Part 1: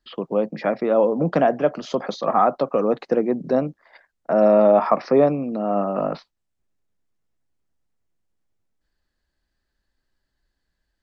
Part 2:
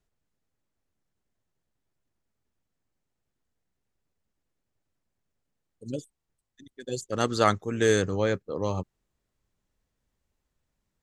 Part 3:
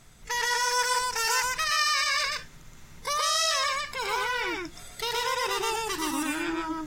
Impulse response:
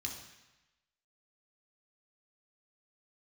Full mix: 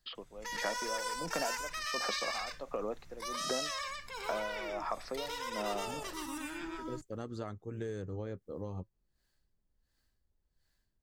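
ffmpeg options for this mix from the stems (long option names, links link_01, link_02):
-filter_complex "[0:a]highpass=frequency=550:poles=1,highshelf=frequency=4600:gain=10,aeval=exprs='val(0)*pow(10,-24*(0.5-0.5*cos(2*PI*1.4*n/s))/20)':channel_layout=same,volume=-1.5dB[link_01];[1:a]acompressor=threshold=-34dB:ratio=2,flanger=delay=1.7:depth=3.9:regen=-74:speed=0.38:shape=triangular,tiltshelf=frequency=1100:gain=6,volume=-6.5dB[link_02];[2:a]adelay=150,volume=-12dB[link_03];[link_01][link_02]amix=inputs=2:normalize=0,acompressor=threshold=-35dB:ratio=6,volume=0dB[link_04];[link_03][link_04]amix=inputs=2:normalize=0,lowshelf=frequency=66:gain=8.5"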